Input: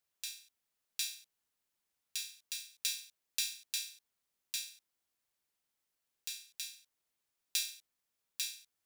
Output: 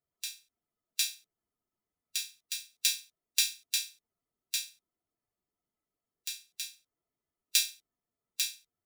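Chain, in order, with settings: per-bin expansion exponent 1.5; gain +9 dB

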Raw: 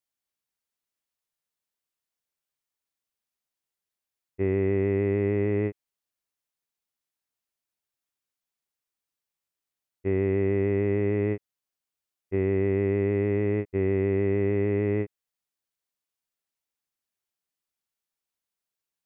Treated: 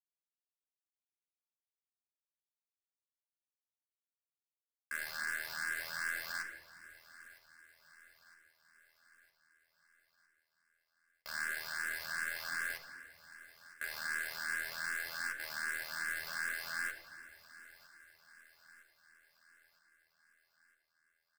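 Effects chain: per-bin compression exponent 0.2; brick-wall FIR high-pass 1400 Hz; bell 2400 Hz -7.5 dB 0.3 oct; varispeed -19%; bit-crush 7-bit; tempo 1.1×; on a send: feedback echo 0.959 s, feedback 55%, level -18.5 dB; on the sum: shoebox room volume 2900 m³, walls mixed, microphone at 1.3 m; endless phaser +2.6 Hz; gain +5.5 dB

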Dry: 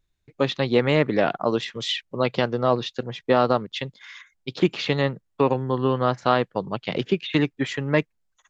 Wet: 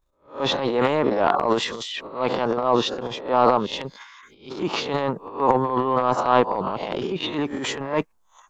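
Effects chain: spectral swells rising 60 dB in 0.30 s; graphic EQ 125/1000/2000/4000 Hz -10/+11/-8/-4 dB; transient shaper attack -8 dB, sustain +11 dB; gain -2 dB

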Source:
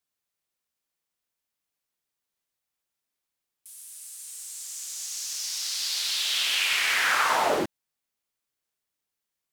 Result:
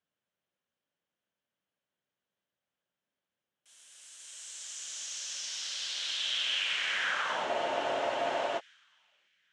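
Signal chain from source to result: low shelf 290 Hz +5.5 dB; compressor 6:1, threshold -33 dBFS, peak gain reduction 13 dB; speaker cabinet 110–7000 Hz, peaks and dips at 190 Hz +4 dB, 570 Hz +7 dB, 1600 Hz +6 dB, 3100 Hz +8 dB, 4700 Hz -6 dB; on a send: thin delay 0.811 s, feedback 37%, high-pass 2300 Hz, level -16 dB; on the sum: spectral freeze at 7.47, 1.12 s; mismatched tape noise reduction decoder only

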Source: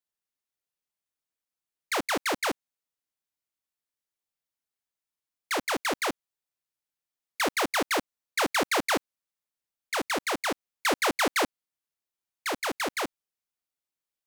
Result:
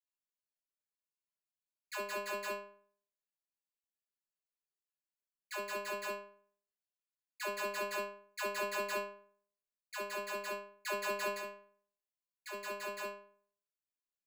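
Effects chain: ripple EQ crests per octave 1.4, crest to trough 10 dB; 11.28–12.52 compressor 6:1, threshold -29 dBFS, peak gain reduction 9 dB; metallic resonator 200 Hz, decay 0.55 s, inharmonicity 0.002; gain +1 dB

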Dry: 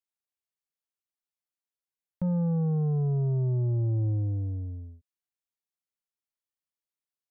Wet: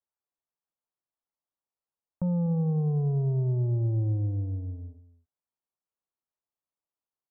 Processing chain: LPF 1100 Hz 24 dB/oct; echo 0.245 s -16 dB; mismatched tape noise reduction encoder only

